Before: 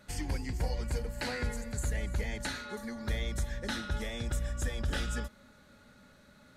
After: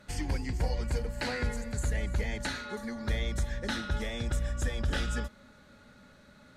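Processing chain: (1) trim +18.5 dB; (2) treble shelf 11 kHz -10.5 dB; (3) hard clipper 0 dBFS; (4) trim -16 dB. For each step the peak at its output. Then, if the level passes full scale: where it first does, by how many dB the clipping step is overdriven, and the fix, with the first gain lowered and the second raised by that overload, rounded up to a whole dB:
-3.5 dBFS, -3.5 dBFS, -3.5 dBFS, -19.5 dBFS; nothing clips

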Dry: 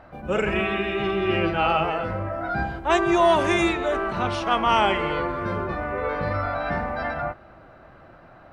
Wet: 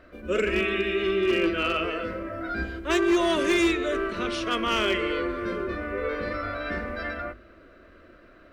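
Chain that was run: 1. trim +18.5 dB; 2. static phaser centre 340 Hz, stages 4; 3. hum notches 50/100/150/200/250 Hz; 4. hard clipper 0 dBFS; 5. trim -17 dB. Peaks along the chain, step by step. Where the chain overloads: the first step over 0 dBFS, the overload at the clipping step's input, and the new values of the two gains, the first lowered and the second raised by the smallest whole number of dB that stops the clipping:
+10.5 dBFS, +7.0 dBFS, +7.0 dBFS, 0.0 dBFS, -17.0 dBFS; step 1, 7.0 dB; step 1 +11.5 dB, step 5 -10 dB

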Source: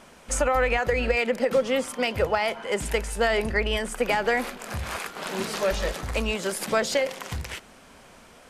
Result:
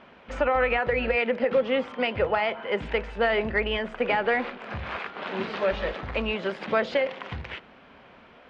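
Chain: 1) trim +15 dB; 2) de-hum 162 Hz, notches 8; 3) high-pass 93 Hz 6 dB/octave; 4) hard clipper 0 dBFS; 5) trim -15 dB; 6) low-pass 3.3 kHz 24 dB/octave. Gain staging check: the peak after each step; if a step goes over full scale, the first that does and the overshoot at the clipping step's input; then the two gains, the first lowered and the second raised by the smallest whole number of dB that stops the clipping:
+4.5 dBFS, +4.0 dBFS, +4.0 dBFS, 0.0 dBFS, -15.0 dBFS, -13.5 dBFS; step 1, 4.0 dB; step 1 +11 dB, step 5 -11 dB

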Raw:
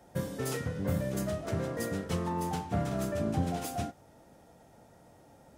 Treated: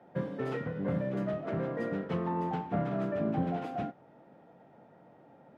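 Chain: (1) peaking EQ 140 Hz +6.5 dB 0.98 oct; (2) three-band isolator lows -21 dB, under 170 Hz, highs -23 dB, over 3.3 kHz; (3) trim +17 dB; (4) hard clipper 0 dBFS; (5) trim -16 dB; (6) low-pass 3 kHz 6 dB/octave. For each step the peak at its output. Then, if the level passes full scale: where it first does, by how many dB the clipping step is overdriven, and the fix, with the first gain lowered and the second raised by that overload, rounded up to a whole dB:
-14.0 dBFS, -21.0 dBFS, -4.0 dBFS, -4.0 dBFS, -20.0 dBFS, -20.0 dBFS; nothing clips

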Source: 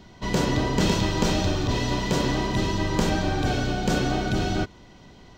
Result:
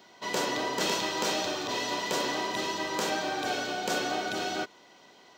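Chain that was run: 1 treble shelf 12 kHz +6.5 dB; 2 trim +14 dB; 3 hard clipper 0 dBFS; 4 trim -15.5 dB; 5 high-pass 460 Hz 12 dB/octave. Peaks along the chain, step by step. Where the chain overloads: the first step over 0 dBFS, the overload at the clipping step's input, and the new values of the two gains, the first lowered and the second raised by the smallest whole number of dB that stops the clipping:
-7.5 dBFS, +6.5 dBFS, 0.0 dBFS, -15.5 dBFS, -15.5 dBFS; step 2, 6.5 dB; step 2 +7 dB, step 4 -8.5 dB

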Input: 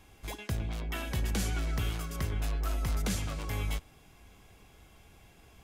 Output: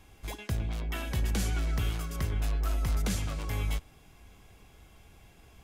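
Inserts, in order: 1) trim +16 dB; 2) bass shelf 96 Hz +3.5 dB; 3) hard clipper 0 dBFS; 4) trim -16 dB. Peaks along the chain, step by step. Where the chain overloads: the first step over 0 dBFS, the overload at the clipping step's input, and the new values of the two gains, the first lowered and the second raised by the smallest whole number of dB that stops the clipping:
-7.5 dBFS, -5.0 dBFS, -5.0 dBFS, -21.0 dBFS; nothing clips

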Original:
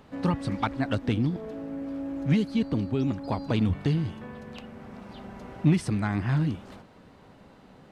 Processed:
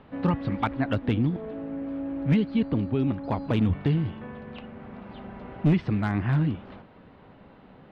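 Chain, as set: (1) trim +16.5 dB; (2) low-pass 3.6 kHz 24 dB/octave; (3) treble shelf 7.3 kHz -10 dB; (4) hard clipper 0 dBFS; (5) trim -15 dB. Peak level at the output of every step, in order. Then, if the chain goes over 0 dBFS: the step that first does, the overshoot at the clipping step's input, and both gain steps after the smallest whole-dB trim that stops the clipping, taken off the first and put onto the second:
+6.0 dBFS, +6.0 dBFS, +6.0 dBFS, 0.0 dBFS, -15.0 dBFS; step 1, 6.0 dB; step 1 +10.5 dB, step 5 -9 dB

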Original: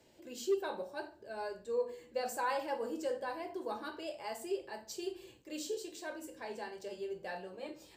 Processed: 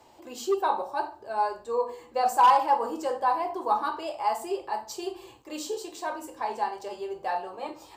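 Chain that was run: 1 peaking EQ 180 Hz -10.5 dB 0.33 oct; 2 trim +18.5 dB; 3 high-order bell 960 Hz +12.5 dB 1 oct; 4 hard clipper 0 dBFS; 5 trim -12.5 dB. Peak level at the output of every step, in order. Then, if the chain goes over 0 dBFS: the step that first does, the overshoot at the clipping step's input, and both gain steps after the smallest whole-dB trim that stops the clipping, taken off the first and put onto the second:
-24.0 dBFS, -5.5 dBFS, +4.0 dBFS, 0.0 dBFS, -12.5 dBFS; step 3, 4.0 dB; step 2 +14.5 dB, step 5 -8.5 dB

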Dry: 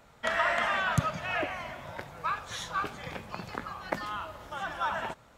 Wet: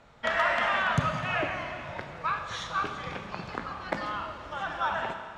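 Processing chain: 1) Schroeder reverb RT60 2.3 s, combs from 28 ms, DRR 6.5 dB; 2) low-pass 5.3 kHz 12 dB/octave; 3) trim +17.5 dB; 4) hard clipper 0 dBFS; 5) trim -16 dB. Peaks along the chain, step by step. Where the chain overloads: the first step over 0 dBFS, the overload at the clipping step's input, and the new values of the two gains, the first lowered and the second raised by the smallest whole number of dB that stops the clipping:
-12.0 dBFS, -12.0 dBFS, +5.5 dBFS, 0.0 dBFS, -16.0 dBFS; step 3, 5.5 dB; step 3 +11.5 dB, step 5 -10 dB

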